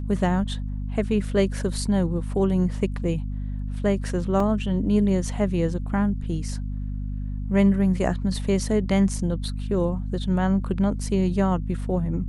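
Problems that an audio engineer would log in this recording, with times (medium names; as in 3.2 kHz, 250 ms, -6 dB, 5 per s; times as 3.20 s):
hum 50 Hz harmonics 5 -29 dBFS
4.40 s: dropout 2.6 ms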